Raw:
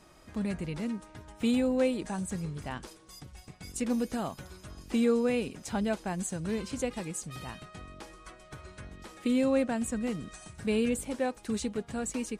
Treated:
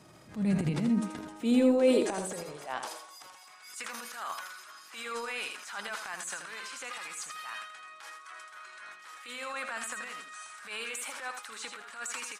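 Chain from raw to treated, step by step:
high-pass filter sweep 120 Hz → 1,300 Hz, 0:00.15–0:03.73
transient designer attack −9 dB, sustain +9 dB
single-tap delay 81 ms −7 dB

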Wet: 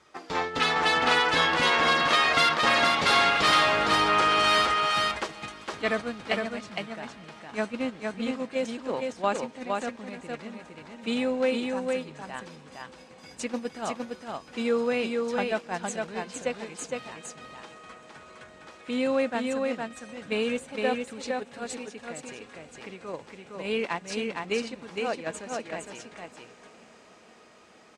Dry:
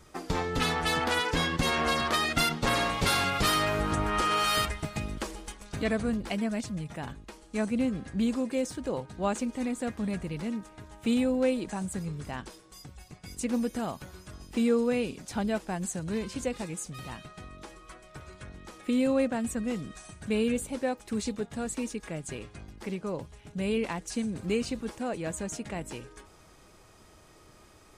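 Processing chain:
in parallel at +2 dB: downward compressor 6 to 1, threshold −35 dBFS, peak gain reduction 14 dB
on the sum: high-pass filter 730 Hz 6 dB per octave
feedback delay with all-pass diffusion 947 ms, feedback 61%, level −16 dB
noise gate −32 dBFS, range −9 dB
Bessel low-pass filter 4,100 Hz, order 2
on a send: single-tap delay 461 ms −3.5 dB
on the sum: level +4 dB

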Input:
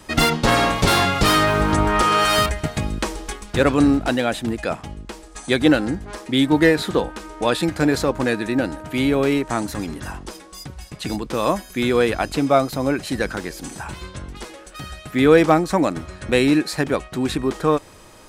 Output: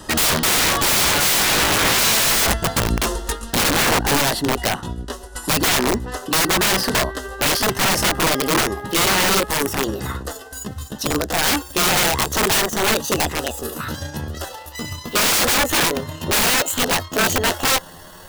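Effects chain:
pitch glide at a constant tempo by +10 semitones starting unshifted
Butterworth band-reject 2,300 Hz, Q 3.6
wrap-around overflow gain 18.5 dB
level +6.5 dB

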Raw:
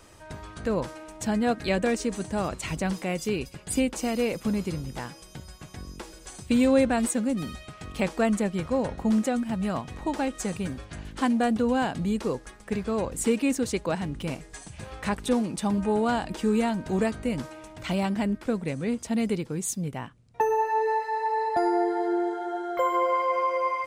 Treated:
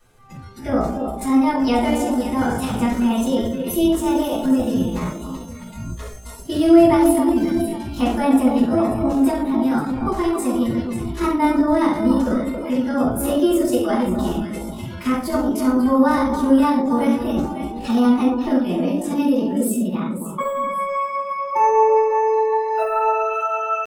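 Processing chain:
delay that swaps between a low-pass and a high-pass 272 ms, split 980 Hz, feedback 56%, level −6 dB
dynamic equaliser 2,400 Hz, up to −4 dB, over −41 dBFS, Q 0.91
rectangular room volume 600 cubic metres, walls furnished, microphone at 8.2 metres
pitch shifter +4 semitones
noise reduction from a noise print of the clip's start 11 dB
level −5 dB

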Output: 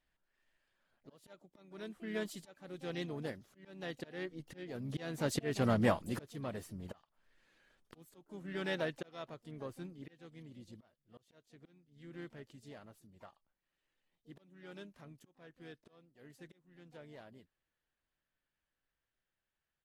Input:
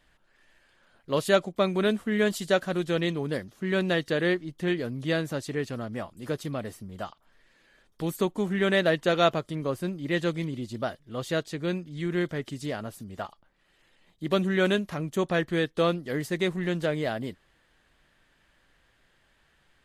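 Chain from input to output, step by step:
source passing by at 0:05.64, 7 m/s, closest 1.4 metres
volume swells 601 ms
pitch-shifted copies added −3 semitones −15 dB, +7 semitones −13 dB
level +10.5 dB

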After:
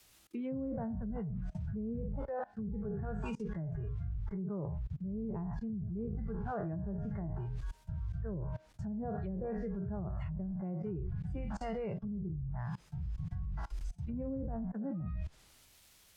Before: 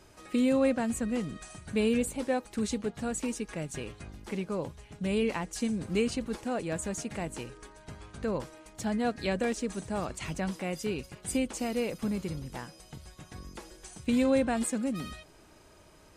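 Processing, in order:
peak hold with a decay on every bin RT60 0.53 s
noise reduction from a noise print of the clip's start 23 dB
bass and treble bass +14 dB, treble −11 dB
in parallel at −7 dB: bit-depth reduction 8 bits, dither triangular
on the sum: treble cut that deepens with the level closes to 390 Hz, closed at −17 dBFS
reversed playback
downward compressor 8 to 1, threshold −35 dBFS, peak gain reduction 18.5 dB
reversed playback
high-shelf EQ 2,800 Hz −11.5 dB
output level in coarse steps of 23 dB
multiband upward and downward expander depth 40%
level +9 dB

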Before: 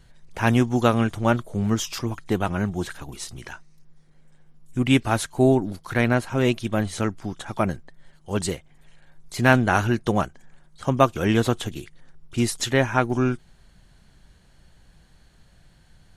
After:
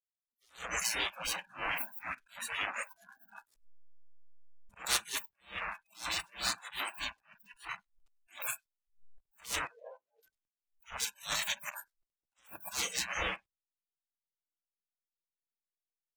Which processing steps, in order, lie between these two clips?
downward expander −44 dBFS
leveller curve on the samples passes 5
gate on every frequency bin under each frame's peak −30 dB weak
in parallel at −0.5 dB: downward compressor 12 to 1, threshold −40 dBFS, peak gain reduction 21.5 dB
on the sum: comb and all-pass reverb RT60 2.7 s, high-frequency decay 0.35×, pre-delay 75 ms, DRR 19.5 dB
slack as between gear wheels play −35 dBFS
0:09.67–0:10.23: resonant band-pass 480 Hz, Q 2.9
on a send: single-tap delay 99 ms −22.5 dB
on the sum: noise reduction from a noise print of the clip's start 29 dB
level that may rise only so fast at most 200 dB per second
level −4.5 dB

